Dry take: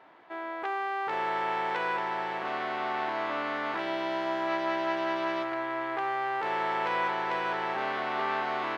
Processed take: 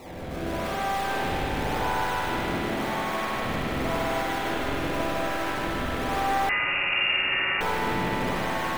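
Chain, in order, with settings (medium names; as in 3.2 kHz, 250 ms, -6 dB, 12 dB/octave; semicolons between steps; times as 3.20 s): one-bit delta coder 32 kbps, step -38.5 dBFS; 3.71–4.22 s: comb 4.2 ms, depth 99%; peak limiter -29 dBFS, peak gain reduction 11.5 dB; decimation with a swept rate 27×, swing 160% 0.91 Hz; thinning echo 153 ms, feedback 73%, high-pass 320 Hz, level -3.5 dB; spring tank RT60 3.2 s, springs 45/57 ms, chirp 30 ms, DRR -9 dB; 6.49–7.61 s: frequency inversion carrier 2.8 kHz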